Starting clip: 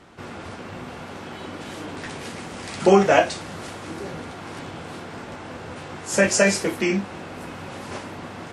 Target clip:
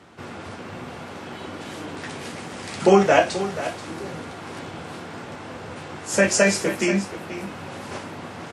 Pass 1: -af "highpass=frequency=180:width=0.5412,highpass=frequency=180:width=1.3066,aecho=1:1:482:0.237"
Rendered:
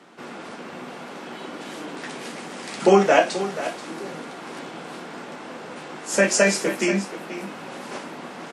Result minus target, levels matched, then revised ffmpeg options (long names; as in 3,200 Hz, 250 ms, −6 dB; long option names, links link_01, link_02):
125 Hz band −3.0 dB
-af "highpass=frequency=69:width=0.5412,highpass=frequency=69:width=1.3066,aecho=1:1:482:0.237"